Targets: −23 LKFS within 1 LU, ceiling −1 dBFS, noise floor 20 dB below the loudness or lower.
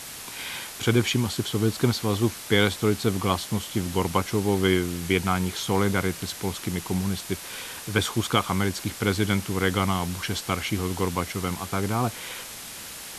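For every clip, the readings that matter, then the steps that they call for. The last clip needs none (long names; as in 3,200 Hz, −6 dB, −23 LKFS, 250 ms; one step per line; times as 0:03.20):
background noise floor −39 dBFS; target noise floor −46 dBFS; integrated loudness −26.0 LKFS; sample peak −5.0 dBFS; target loudness −23.0 LKFS
→ broadband denoise 7 dB, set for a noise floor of −39 dBFS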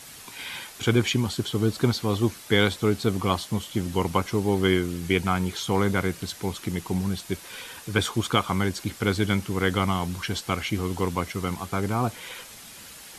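background noise floor −45 dBFS; target noise floor −46 dBFS
→ broadband denoise 6 dB, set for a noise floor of −45 dBFS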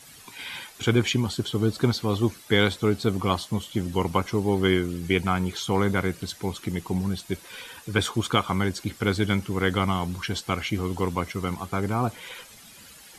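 background noise floor −49 dBFS; integrated loudness −26.0 LKFS; sample peak −5.0 dBFS; target loudness −23.0 LKFS
→ level +3 dB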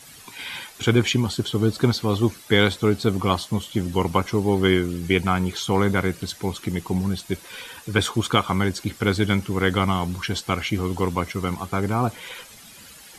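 integrated loudness −23.0 LKFS; sample peak −2.0 dBFS; background noise floor −46 dBFS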